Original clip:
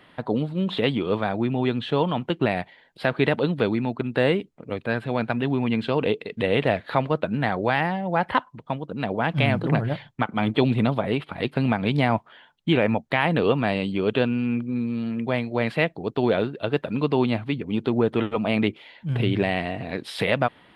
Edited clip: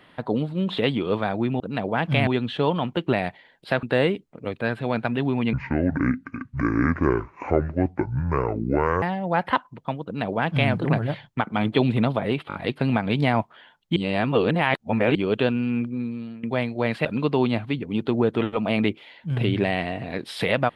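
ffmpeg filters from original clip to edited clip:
ffmpeg -i in.wav -filter_complex "[0:a]asplit=13[link_01][link_02][link_03][link_04][link_05][link_06][link_07][link_08][link_09][link_10][link_11][link_12][link_13];[link_01]atrim=end=1.602[link_14];[link_02]atrim=start=8.858:end=9.532[link_15];[link_03]atrim=start=1.598:end=3.162[link_16];[link_04]atrim=start=4.078:end=5.784[link_17];[link_05]atrim=start=5.78:end=7.84,asetpts=PTS-STARTPTS,asetrate=26019,aresample=44100,atrim=end_sample=153976,asetpts=PTS-STARTPTS[link_18];[link_06]atrim=start=7.836:end=11.322[link_19];[link_07]atrim=start=11.298:end=11.322[link_20];[link_08]atrim=start=11.298:end=11.322[link_21];[link_09]atrim=start=11.298:end=12.722[link_22];[link_10]atrim=start=12.718:end=13.912,asetpts=PTS-STARTPTS,areverse[link_23];[link_11]atrim=start=13.908:end=15.19,asetpts=PTS-STARTPTS,afade=type=out:start_time=0.702:duration=0.58:silence=0.199526[link_24];[link_12]atrim=start=15.19:end=15.812,asetpts=PTS-STARTPTS,afade=type=in:duration=0.004:curve=hsin:silence=0.199526[link_25];[link_13]atrim=start=16.838[link_26];[link_14][link_15]acrossfade=duration=0.004:curve1=hsin:curve2=hsin[link_27];[link_27][link_16]acrossfade=duration=0.004:curve1=hsin:curve2=hsin[link_28];[link_28][link_17]acrossfade=duration=0.004:curve1=hsin:curve2=hsin[link_29];[link_29][link_18]acrossfade=duration=0.004:curve1=hsin:curve2=hsin[link_30];[link_30][link_19]acrossfade=duration=0.004:curve1=hsin:curve2=hsin[link_31];[link_31][link_20]acrossfade=duration=0.004:curve1=hsin:curve2=hsin[link_32];[link_32][link_21]acrossfade=duration=0.004:curve1=hsin:curve2=hsin[link_33];[link_33][link_22]acrossfade=duration=0.004:curve1=hsin:curve2=hsin[link_34];[link_34][link_23]acrossfade=duration=0.004:curve1=hsin:curve2=hsin[link_35];[link_24][link_25]concat=n=2:v=0:a=1[link_36];[link_35][link_36]acrossfade=duration=0.004:curve1=hsin:curve2=hsin[link_37];[link_37][link_26]acrossfade=duration=0.004:curve1=hsin:curve2=hsin" out.wav

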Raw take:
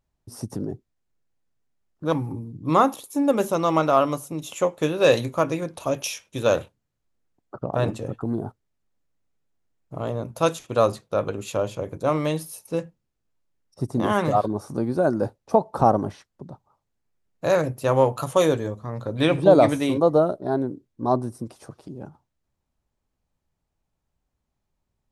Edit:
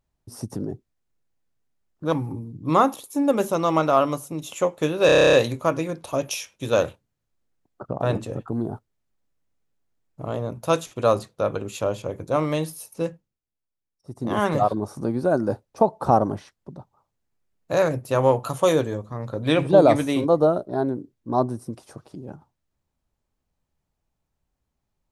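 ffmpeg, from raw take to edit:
ffmpeg -i in.wav -filter_complex "[0:a]asplit=12[link_01][link_02][link_03][link_04][link_05][link_06][link_07][link_08][link_09][link_10][link_11][link_12];[link_01]atrim=end=5.092[link_13];[link_02]atrim=start=5.058:end=5.092[link_14];[link_03]atrim=start=5.058:end=5.092[link_15];[link_04]atrim=start=5.058:end=5.092[link_16];[link_05]atrim=start=5.058:end=5.092[link_17];[link_06]atrim=start=5.058:end=5.092[link_18];[link_07]atrim=start=5.058:end=5.092[link_19];[link_08]atrim=start=5.058:end=5.092[link_20];[link_09]atrim=start=5.058:end=5.092[link_21];[link_10]atrim=start=5.058:end=13.14,asetpts=PTS-STARTPTS,afade=type=out:start_time=7.742:duration=0.34:silence=0.237137[link_22];[link_11]atrim=start=13.14:end=13.81,asetpts=PTS-STARTPTS,volume=-12.5dB[link_23];[link_12]atrim=start=13.81,asetpts=PTS-STARTPTS,afade=type=in:duration=0.34:silence=0.237137[link_24];[link_13][link_14]acrossfade=duration=0.004:curve1=hsin:curve2=hsin[link_25];[link_25][link_15]acrossfade=duration=0.004:curve1=hsin:curve2=hsin[link_26];[link_26][link_16]acrossfade=duration=0.004:curve1=hsin:curve2=hsin[link_27];[link_27][link_17]acrossfade=duration=0.004:curve1=hsin:curve2=hsin[link_28];[link_28][link_18]acrossfade=duration=0.004:curve1=hsin:curve2=hsin[link_29];[link_29][link_19]acrossfade=duration=0.004:curve1=hsin:curve2=hsin[link_30];[link_30][link_20]acrossfade=duration=0.004:curve1=hsin:curve2=hsin[link_31];[link_31][link_21]acrossfade=duration=0.004:curve1=hsin:curve2=hsin[link_32];[link_22][link_23][link_24]concat=n=3:v=0:a=1[link_33];[link_32][link_33]acrossfade=duration=0.004:curve1=hsin:curve2=hsin" out.wav

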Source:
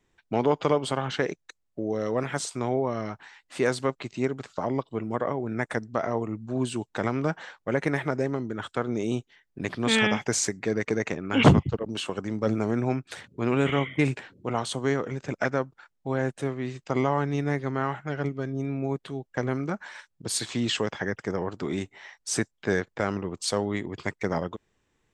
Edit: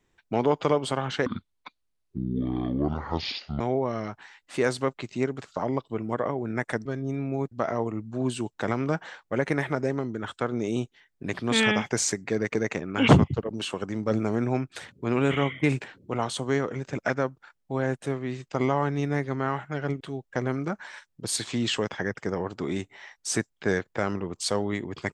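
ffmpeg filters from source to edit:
ffmpeg -i in.wav -filter_complex "[0:a]asplit=6[link_01][link_02][link_03][link_04][link_05][link_06];[link_01]atrim=end=1.264[link_07];[link_02]atrim=start=1.26:end=2.62,asetpts=PTS-STARTPTS,asetrate=25578,aresample=44100[link_08];[link_03]atrim=start=2.616:end=5.872[link_09];[link_04]atrim=start=18.358:end=19.022[link_10];[link_05]atrim=start=5.868:end=18.362[link_11];[link_06]atrim=start=19.018[link_12];[link_07][link_08]acrossfade=duration=0.004:curve1=hsin:curve2=hsin[link_13];[link_13][link_09]acrossfade=duration=0.004:curve1=hsin:curve2=hsin[link_14];[link_14][link_10]acrossfade=duration=0.004:curve1=hsin:curve2=hsin[link_15];[link_15][link_11]acrossfade=duration=0.004:curve1=hsin:curve2=hsin[link_16];[link_16][link_12]acrossfade=duration=0.004:curve1=hsin:curve2=hsin" out.wav

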